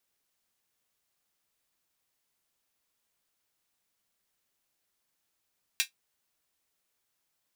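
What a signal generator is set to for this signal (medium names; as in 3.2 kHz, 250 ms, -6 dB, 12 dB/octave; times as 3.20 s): closed hi-hat, high-pass 2.4 kHz, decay 0.12 s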